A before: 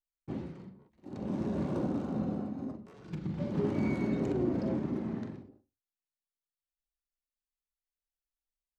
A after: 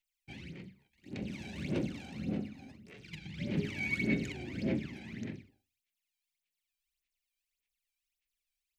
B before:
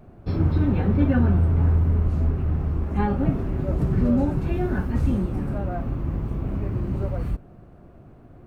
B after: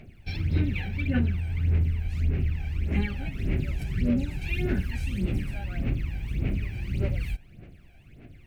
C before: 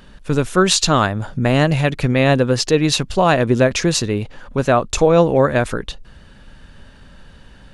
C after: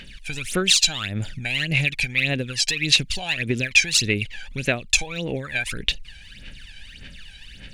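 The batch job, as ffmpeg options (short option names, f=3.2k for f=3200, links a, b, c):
-af "acompressor=threshold=-20dB:ratio=6,highshelf=f=1.6k:t=q:w=3:g=13,aphaser=in_gain=1:out_gain=1:delay=1.3:decay=0.74:speed=1.7:type=sinusoidal,volume=-10.5dB"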